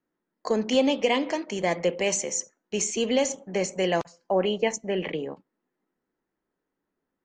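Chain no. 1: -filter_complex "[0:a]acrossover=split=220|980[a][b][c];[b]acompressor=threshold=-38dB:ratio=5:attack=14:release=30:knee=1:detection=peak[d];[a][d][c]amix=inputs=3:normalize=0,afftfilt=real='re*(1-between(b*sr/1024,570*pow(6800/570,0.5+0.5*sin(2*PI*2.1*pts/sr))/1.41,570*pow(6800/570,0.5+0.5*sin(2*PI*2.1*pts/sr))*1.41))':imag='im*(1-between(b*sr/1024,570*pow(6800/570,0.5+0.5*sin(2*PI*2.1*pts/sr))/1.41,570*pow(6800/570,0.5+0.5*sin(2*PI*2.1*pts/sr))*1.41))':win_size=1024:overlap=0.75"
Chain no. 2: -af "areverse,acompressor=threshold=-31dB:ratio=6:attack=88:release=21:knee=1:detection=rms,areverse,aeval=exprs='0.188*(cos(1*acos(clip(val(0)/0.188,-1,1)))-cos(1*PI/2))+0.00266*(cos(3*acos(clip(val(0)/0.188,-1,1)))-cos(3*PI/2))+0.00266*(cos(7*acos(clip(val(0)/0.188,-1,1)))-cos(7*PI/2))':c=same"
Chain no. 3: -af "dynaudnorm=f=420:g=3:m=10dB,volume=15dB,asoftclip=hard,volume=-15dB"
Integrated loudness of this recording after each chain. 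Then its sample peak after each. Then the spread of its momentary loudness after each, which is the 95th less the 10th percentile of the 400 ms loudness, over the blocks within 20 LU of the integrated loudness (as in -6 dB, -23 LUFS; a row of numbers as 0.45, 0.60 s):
-30.5, -30.0, -21.0 LUFS; -14.5, -15.0, -15.0 dBFS; 8, 5, 7 LU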